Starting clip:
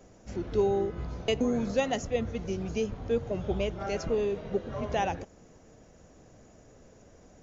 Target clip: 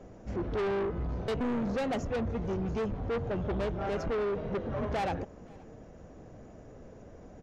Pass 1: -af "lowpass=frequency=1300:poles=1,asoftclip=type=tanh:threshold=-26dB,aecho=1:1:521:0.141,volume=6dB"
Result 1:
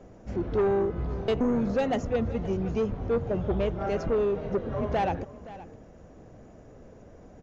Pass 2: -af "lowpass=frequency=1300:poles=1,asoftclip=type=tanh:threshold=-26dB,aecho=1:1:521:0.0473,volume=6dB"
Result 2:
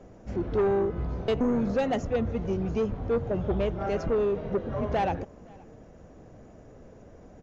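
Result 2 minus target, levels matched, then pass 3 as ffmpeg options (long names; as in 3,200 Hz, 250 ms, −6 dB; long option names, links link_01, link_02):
soft clipping: distortion −7 dB
-af "lowpass=frequency=1300:poles=1,asoftclip=type=tanh:threshold=-34.5dB,aecho=1:1:521:0.0473,volume=6dB"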